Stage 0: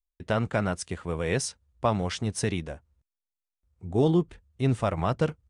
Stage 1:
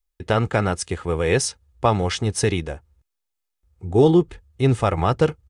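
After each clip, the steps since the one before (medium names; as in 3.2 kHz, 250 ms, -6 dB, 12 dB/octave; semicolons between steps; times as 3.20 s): comb 2.4 ms, depth 35%; trim +7 dB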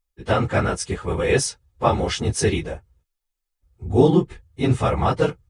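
phase randomisation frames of 50 ms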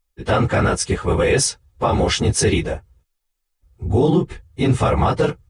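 peak limiter -13.5 dBFS, peak gain reduction 10 dB; trim +6 dB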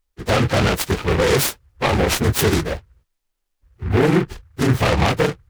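delay time shaken by noise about 1.3 kHz, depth 0.13 ms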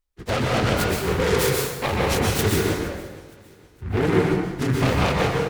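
feedback delay 466 ms, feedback 41%, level -21.5 dB; plate-style reverb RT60 1.1 s, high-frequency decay 0.75×, pre-delay 110 ms, DRR -1.5 dB; trim -6.5 dB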